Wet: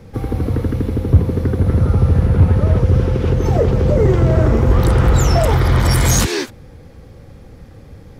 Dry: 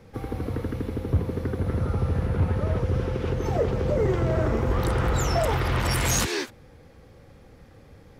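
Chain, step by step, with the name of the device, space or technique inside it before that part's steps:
exciter from parts (in parallel at −11 dB: high-pass filter 2,900 Hz 12 dB per octave + soft clipping −23 dBFS, distortion −15 dB)
0:05.52–0:06.20: on the sum: notch filter 2,700 Hz, Q 6
low-shelf EQ 300 Hz +7 dB
level +6 dB

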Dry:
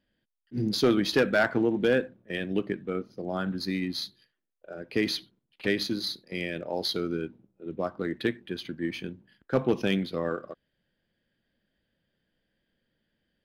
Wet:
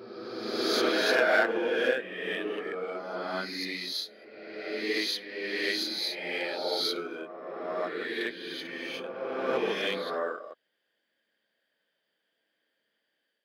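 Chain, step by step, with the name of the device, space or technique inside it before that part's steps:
ghost voice (reversed playback; convolution reverb RT60 2.2 s, pre-delay 17 ms, DRR −4.5 dB; reversed playback; high-pass filter 560 Hz 12 dB per octave)
level −2.5 dB

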